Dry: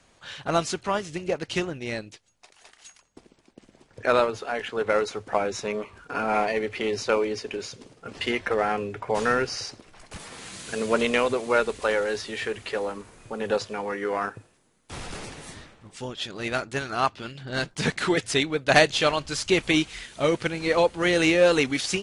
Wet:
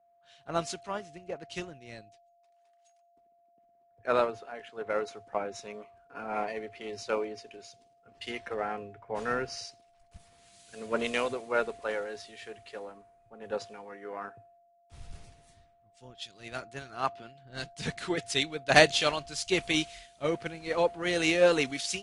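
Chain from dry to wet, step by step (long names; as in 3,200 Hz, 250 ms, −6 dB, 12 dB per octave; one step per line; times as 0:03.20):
steady tone 690 Hz −36 dBFS
multiband upward and downward expander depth 100%
level −9.5 dB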